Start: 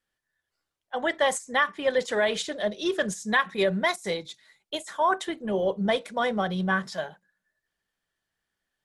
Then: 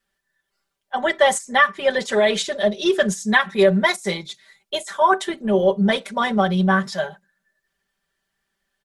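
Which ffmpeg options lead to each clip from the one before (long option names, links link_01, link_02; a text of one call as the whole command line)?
ffmpeg -i in.wav -af "aecho=1:1:5.1:0.93,volume=4dB" out.wav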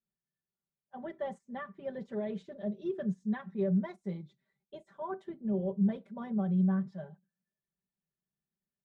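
ffmpeg -i in.wav -af "bandpass=frequency=140:width_type=q:width=1.4:csg=0,volume=-5.5dB" out.wav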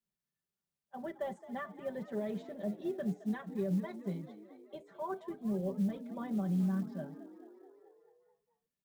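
ffmpeg -i in.wav -filter_complex "[0:a]acrossover=split=130|3000[link_01][link_02][link_03];[link_02]acompressor=threshold=-32dB:ratio=6[link_04];[link_01][link_04][link_03]amix=inputs=3:normalize=0,asplit=8[link_05][link_06][link_07][link_08][link_09][link_10][link_11][link_12];[link_06]adelay=217,afreqshift=43,volume=-16dB[link_13];[link_07]adelay=434,afreqshift=86,volume=-19.9dB[link_14];[link_08]adelay=651,afreqshift=129,volume=-23.8dB[link_15];[link_09]adelay=868,afreqshift=172,volume=-27.6dB[link_16];[link_10]adelay=1085,afreqshift=215,volume=-31.5dB[link_17];[link_11]adelay=1302,afreqshift=258,volume=-35.4dB[link_18];[link_12]adelay=1519,afreqshift=301,volume=-39.3dB[link_19];[link_05][link_13][link_14][link_15][link_16][link_17][link_18][link_19]amix=inputs=8:normalize=0,acrusher=bits=8:mode=log:mix=0:aa=0.000001" out.wav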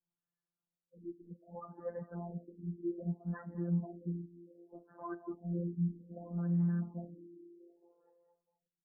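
ffmpeg -i in.wav -af "afftfilt=real='hypot(re,im)*cos(PI*b)':imag='0':win_size=1024:overlap=0.75,aexciter=amount=11.3:drive=7.5:freq=3200,afftfilt=real='re*lt(b*sr/1024,400*pow(2100/400,0.5+0.5*sin(2*PI*0.64*pts/sr)))':imag='im*lt(b*sr/1024,400*pow(2100/400,0.5+0.5*sin(2*PI*0.64*pts/sr)))':win_size=1024:overlap=0.75,volume=1dB" out.wav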